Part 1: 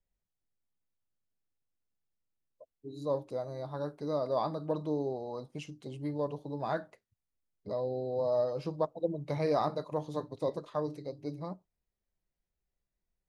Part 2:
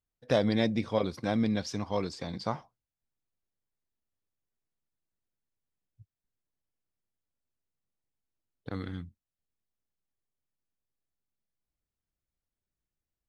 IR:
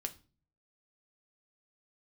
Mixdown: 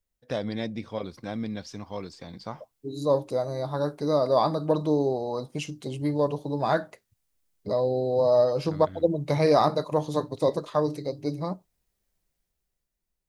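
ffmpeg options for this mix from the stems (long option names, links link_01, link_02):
-filter_complex "[0:a]highshelf=frequency=4300:gain=6.5,dynaudnorm=framelen=150:gausssize=13:maxgain=9dB,volume=0dB[link_01];[1:a]volume=-4.5dB[link_02];[link_01][link_02]amix=inputs=2:normalize=0"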